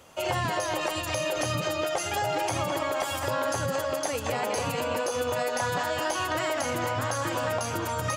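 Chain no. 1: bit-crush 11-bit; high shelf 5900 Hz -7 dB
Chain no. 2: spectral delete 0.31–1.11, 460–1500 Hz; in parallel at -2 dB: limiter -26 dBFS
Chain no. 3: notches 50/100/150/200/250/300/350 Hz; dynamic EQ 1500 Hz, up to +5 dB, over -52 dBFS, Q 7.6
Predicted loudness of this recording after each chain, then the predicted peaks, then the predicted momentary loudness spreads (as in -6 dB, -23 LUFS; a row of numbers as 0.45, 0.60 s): -29.0, -25.5, -28.0 LUFS; -17.5, -15.0, -16.5 dBFS; 2, 2, 2 LU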